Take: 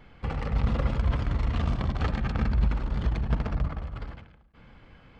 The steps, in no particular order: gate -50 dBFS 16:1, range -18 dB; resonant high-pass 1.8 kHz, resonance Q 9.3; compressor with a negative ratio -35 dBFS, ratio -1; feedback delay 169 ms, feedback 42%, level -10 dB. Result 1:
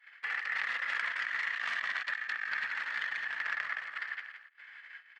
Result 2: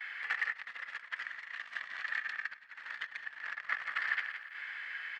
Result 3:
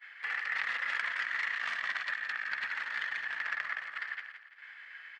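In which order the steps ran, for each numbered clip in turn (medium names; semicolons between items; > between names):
feedback delay > gate > resonant high-pass > compressor with a negative ratio; feedback delay > compressor with a negative ratio > gate > resonant high-pass; resonant high-pass > compressor with a negative ratio > gate > feedback delay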